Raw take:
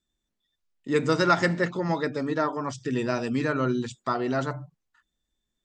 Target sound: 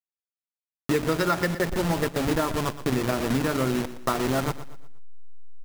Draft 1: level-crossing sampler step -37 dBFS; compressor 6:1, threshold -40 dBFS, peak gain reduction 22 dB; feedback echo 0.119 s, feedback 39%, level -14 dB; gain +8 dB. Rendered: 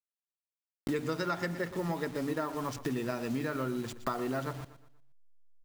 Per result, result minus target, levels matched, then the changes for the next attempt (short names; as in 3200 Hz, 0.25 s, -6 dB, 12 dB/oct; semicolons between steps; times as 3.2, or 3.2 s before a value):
compressor: peak gain reduction +9.5 dB; level-crossing sampler: distortion -12 dB
change: compressor 6:1, threshold -29 dBFS, peak gain reduction 13 dB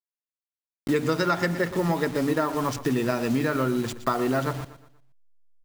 level-crossing sampler: distortion -12 dB
change: level-crossing sampler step -25.5 dBFS